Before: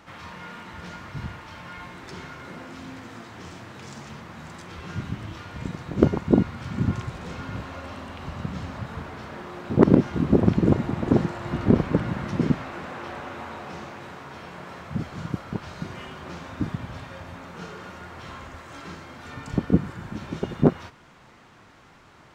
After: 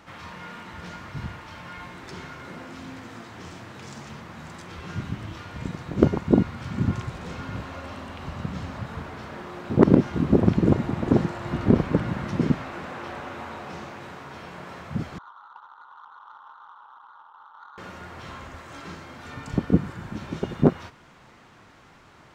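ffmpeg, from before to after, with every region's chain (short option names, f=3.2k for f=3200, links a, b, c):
-filter_complex "[0:a]asettb=1/sr,asplit=3[a][b][c];[a]atrim=end=15.184[d];[b]atrim=start=15.18:end=17.78,asetpts=PTS-STARTPTS,afade=t=in:d=0.004:c=qsin,afade=t=out:st=2.596:d=0.004:c=qsin,asuperpass=centerf=1100:order=12:qfactor=1.7,adynamicsmooth=sensitivity=6.5:basefreq=1.1k[e];[c]atrim=start=17.776[f];[d][e]acrossfade=d=0.004:c1=hsin:c2=qsin[g];[g][f]acrossfade=d=0.004:c1=qsin:c2=hsin"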